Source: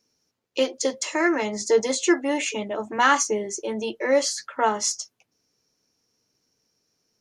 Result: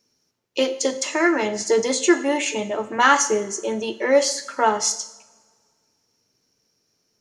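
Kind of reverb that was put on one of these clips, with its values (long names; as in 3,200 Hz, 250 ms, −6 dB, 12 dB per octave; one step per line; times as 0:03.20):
coupled-rooms reverb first 0.68 s, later 1.9 s, from −18 dB, DRR 9 dB
level +2.5 dB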